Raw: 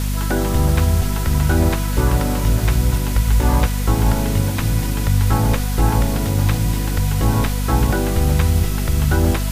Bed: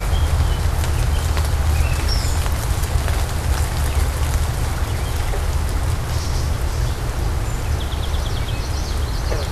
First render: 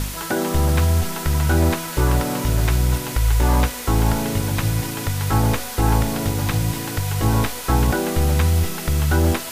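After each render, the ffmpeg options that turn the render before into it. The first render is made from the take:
-af "bandreject=f=50:t=h:w=4,bandreject=f=100:t=h:w=4,bandreject=f=150:t=h:w=4,bandreject=f=200:t=h:w=4,bandreject=f=250:t=h:w=4,bandreject=f=300:t=h:w=4,bandreject=f=350:t=h:w=4,bandreject=f=400:t=h:w=4,bandreject=f=450:t=h:w=4,bandreject=f=500:t=h:w=4,bandreject=f=550:t=h:w=4"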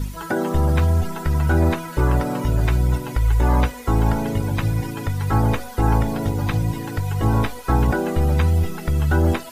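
-af "afftdn=nr=14:nf=-31"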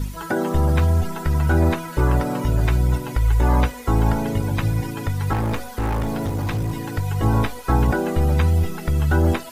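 -filter_complex "[0:a]asettb=1/sr,asplit=3[a][b][c];[a]atrim=end=5.334[d];[b]atrim=start=5.33:end=6.82,asetpts=PTS-STARTPTS,afade=t=in:d=0.004:c=qsin,afade=t=out:st=1.486:d=0.004:c=qsin,asoftclip=type=hard:threshold=-19.5dB[e];[c]atrim=start=6.816[f];[d][e]acrossfade=d=0.004:c1=hsin:c2=qsin[g];[g][f]acrossfade=d=0.004:c1=qsin:c2=hsin"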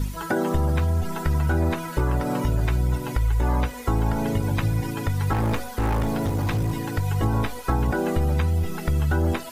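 -af "acompressor=threshold=-18dB:ratio=6"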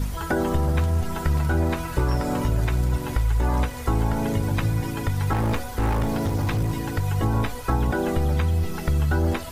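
-filter_complex "[1:a]volume=-17dB[a];[0:a][a]amix=inputs=2:normalize=0"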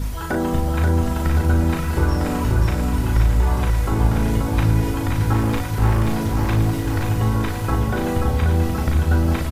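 -filter_complex "[0:a]asplit=2[a][b];[b]adelay=37,volume=-4.5dB[c];[a][c]amix=inputs=2:normalize=0,aecho=1:1:532|1064|1596|2128|2660|3192|3724|4256:0.631|0.366|0.212|0.123|0.0714|0.0414|0.024|0.0139"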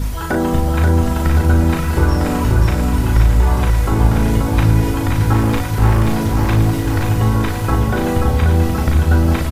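-af "volume=4.5dB"

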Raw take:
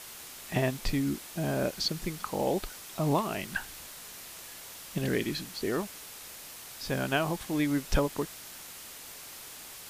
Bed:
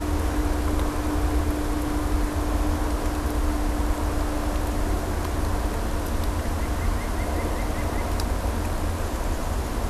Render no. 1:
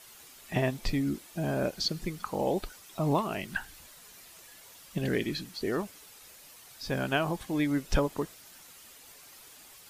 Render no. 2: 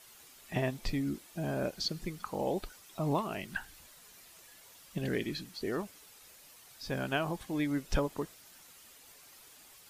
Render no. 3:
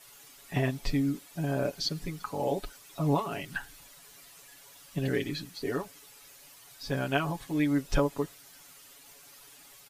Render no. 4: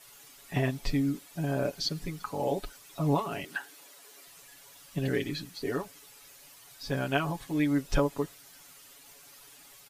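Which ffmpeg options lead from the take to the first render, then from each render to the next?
-af "afftdn=nr=9:nf=-46"
-af "volume=-4dB"
-af "aecho=1:1:7.1:0.98"
-filter_complex "[0:a]asettb=1/sr,asplit=3[a][b][c];[a]atrim=end=3.444[d];[b]atrim=start=3.44:end=4.27,asetpts=PTS-STARTPTS,afade=t=in:d=0.004:c=qsin,afade=t=out:st=0.826:d=0.004:c=qsin,highpass=f=360:t=q:w=1.8[e];[c]atrim=start=4.266[f];[d][e]acrossfade=d=0.004:c1=hsin:c2=qsin[g];[g][f]acrossfade=d=0.004:c1=qsin:c2=hsin"

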